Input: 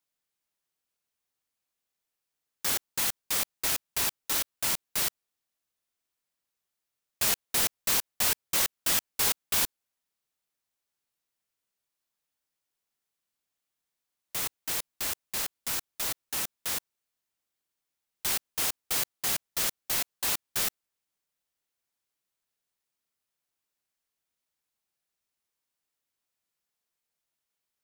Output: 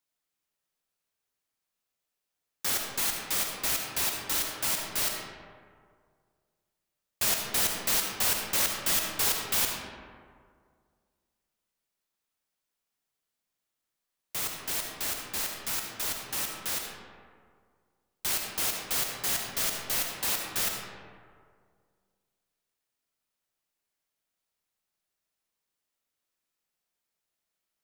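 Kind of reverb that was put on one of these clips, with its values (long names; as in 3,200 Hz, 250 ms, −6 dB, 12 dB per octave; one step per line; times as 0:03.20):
comb and all-pass reverb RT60 2 s, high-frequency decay 0.45×, pre-delay 30 ms, DRR 1.5 dB
level −1 dB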